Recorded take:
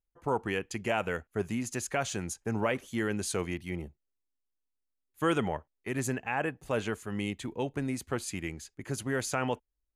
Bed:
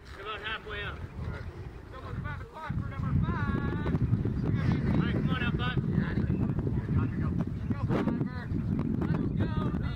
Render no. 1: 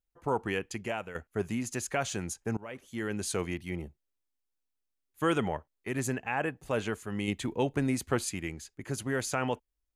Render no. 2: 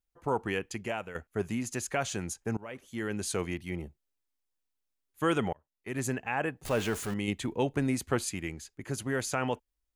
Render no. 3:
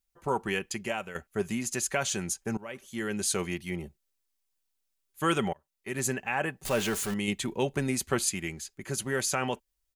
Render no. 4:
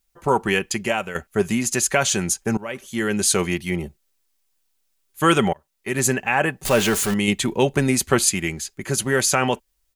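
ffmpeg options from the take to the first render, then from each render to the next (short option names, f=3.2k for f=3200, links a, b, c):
-filter_complex "[0:a]asplit=5[a][b][c][d][e];[a]atrim=end=1.15,asetpts=PTS-STARTPTS,afade=t=out:st=0.67:d=0.48:silence=0.223872[f];[b]atrim=start=1.15:end=2.57,asetpts=PTS-STARTPTS,afade=t=in:d=0.004:c=hsin:silence=0.223872,afade=t=out:st=1.416:d=0.004:c=hsin:silence=0.0707946[g];[c]atrim=start=2.57:end=7.282,asetpts=PTS-STARTPTS,afade=t=in:d=0.72:silence=0.0707946[h];[d]atrim=start=7.278:end=8.292,asetpts=PTS-STARTPTS,volume=4dB[i];[e]atrim=start=8.288[j];[f][g][h]concat=n=3:v=0:a=1[k];[k][i]acrossfade=d=0.004:c1=hsin:c2=hsin[l];[l][j]acrossfade=d=0.004:c1=hsin:c2=hsin"
-filter_complex "[0:a]asettb=1/sr,asplit=3[a][b][c];[a]atrim=end=6.654[d];[b]atrim=start=6.65:end=7.14,asetpts=PTS-STARTPTS,afade=t=in:d=0.004:c=qsin,afade=t=out:st=0.486:d=0.004:c=qsin,aeval=exprs='val(0)+0.5*0.0178*sgn(val(0))':c=same[e];[c]atrim=start=7.136[f];[d][e]acrossfade=d=0.004:c1=hsin:c2=qsin[g];[g][f]acrossfade=d=0.004:c1=qsin:c2=hsin,asplit=2[h][i];[h]atrim=end=5.53,asetpts=PTS-STARTPTS,afade=t=out:st=5.526:d=0.004:c=hsin[j];[i]atrim=start=5.53,asetpts=PTS-STARTPTS,afade=t=in:d=0.52[k];[j][k]concat=n=2:v=0:a=1"
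-af "highshelf=f=2.7k:g=7,aecho=1:1:5.2:0.38"
-af "volume=10dB"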